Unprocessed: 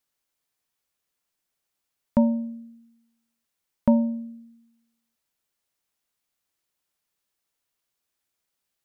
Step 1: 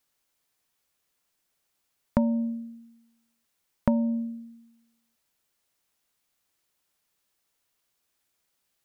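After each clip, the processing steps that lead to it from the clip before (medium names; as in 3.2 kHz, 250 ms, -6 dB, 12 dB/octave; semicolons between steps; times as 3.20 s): compression 6:1, threshold -25 dBFS, peak gain reduction 10.5 dB; trim +4.5 dB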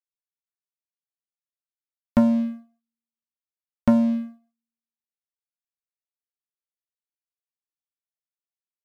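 waveshaping leveller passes 3; upward expansion 2.5:1, over -32 dBFS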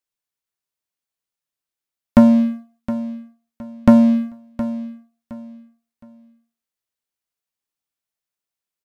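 feedback delay 716 ms, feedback 28%, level -13.5 dB; trim +7.5 dB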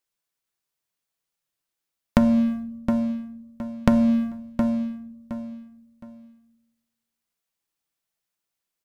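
compression 4:1, threshold -19 dBFS, peak gain reduction 11 dB; simulated room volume 2800 m³, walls furnished, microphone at 0.71 m; trim +3 dB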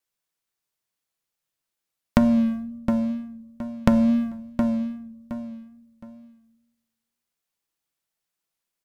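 wow and flutter 28 cents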